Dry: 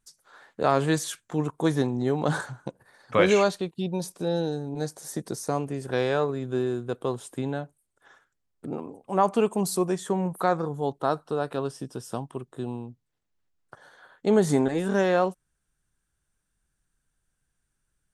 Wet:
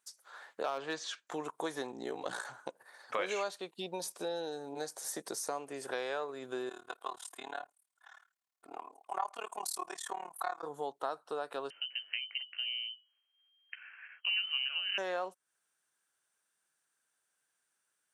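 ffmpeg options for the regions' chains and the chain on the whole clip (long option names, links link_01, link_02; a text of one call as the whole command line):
ffmpeg -i in.wav -filter_complex "[0:a]asettb=1/sr,asplit=3[link_01][link_02][link_03];[link_01]atrim=end=0.634[link_04];[link_02]atrim=start=0.63:end=1.27,asetpts=PTS-STARTPTS,afade=type=in:duration=0.004:curve=qsin,afade=type=out:start_time=0.636:duration=0.004:curve=qsin,lowpass=frequency=5600:width=0.5412,lowpass=frequency=5600:width=1.3066,asoftclip=type=hard:threshold=-12.5dB,bandreject=frequency=2100:width=20[link_05];[link_03]atrim=start=1.266[link_06];[link_04][link_05]acrossfade=duration=0.004:curve1=hsin:curve2=qsin[link_07];[link_07][link_06]acrossfade=duration=0.004:curve1=qsin:curve2=hsin,asettb=1/sr,asplit=3[link_08][link_09][link_10];[link_08]atrim=end=1.914[link_11];[link_09]atrim=start=1.91:end=2.45,asetpts=PTS-STARTPTS,afade=type=in:duration=0.004:curve=qsin,afade=type=out:start_time=0.536:duration=0.004:curve=qsin,equalizer=frequency=1000:width=1.2:gain=-4.5,aeval=exprs='val(0)*sin(2*PI*29*n/s)':channel_layout=same[link_12];[link_10]atrim=start=2.446[link_13];[link_11][link_12]acrossfade=duration=0.004:curve1=hsin:curve2=qsin[link_14];[link_14][link_13]acrossfade=duration=0.004:curve1=qsin:curve2=hsin,asettb=1/sr,asplit=3[link_15][link_16][link_17];[link_15]atrim=end=6.694[link_18];[link_16]atrim=start=6.69:end=10.63,asetpts=PTS-STARTPTS,afade=type=in:duration=0.004:curve=qsin,afade=type=out:start_time=3.936:duration=0.004:curve=qsin,lowshelf=frequency=610:width_type=q:width=1.5:gain=-9,aecho=1:1:2.8:0.52,atrim=end_sample=173754,tremolo=f=37:d=0.974[link_19];[link_17]atrim=start=10.626[link_20];[link_18][link_19]acrossfade=duration=0.004:curve1=hsin:curve2=qsin[link_21];[link_21][link_20]acrossfade=duration=0.004:curve1=qsin:curve2=hsin,asettb=1/sr,asplit=3[link_22][link_23][link_24];[link_22]atrim=end=11.704[link_25];[link_23]atrim=start=11.7:end=14.98,asetpts=PTS-STARTPTS,afade=type=in:duration=0.004:curve=qsin,afade=type=out:start_time=3.276:duration=0.004:curve=qsin,bandreject=frequency=50:width_type=h:width=6,bandreject=frequency=100:width_type=h:width=6,bandreject=frequency=150:width_type=h:width=6,bandreject=frequency=200:width_type=h:width=6,bandreject=frequency=250:width_type=h:width=6,bandreject=frequency=300:width_type=h:width=6,lowpass=frequency=2700:width_type=q:width=0.5098,lowpass=frequency=2700:width_type=q:width=0.6013,lowpass=frequency=2700:width_type=q:width=0.9,lowpass=frequency=2700:width_type=q:width=2.563,afreqshift=-3200[link_26];[link_24]atrim=start=14.976[link_27];[link_25][link_26]acrossfade=duration=0.004:curve1=hsin:curve2=qsin[link_28];[link_28][link_27]acrossfade=duration=0.004:curve1=qsin:curve2=hsin,highpass=560,acompressor=threshold=-37dB:ratio=3,volume=1dB" out.wav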